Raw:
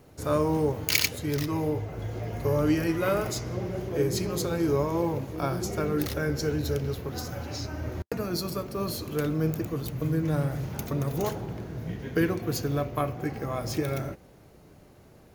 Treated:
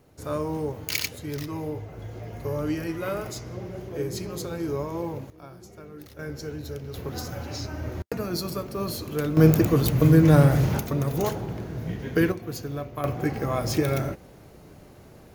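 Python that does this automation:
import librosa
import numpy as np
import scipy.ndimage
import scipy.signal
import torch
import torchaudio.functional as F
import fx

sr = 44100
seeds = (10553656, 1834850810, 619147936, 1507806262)

y = fx.gain(x, sr, db=fx.steps((0.0, -4.0), (5.3, -16.0), (6.19, -7.0), (6.94, 1.0), (9.37, 11.0), (10.79, 3.0), (12.32, -4.5), (13.04, 5.0)))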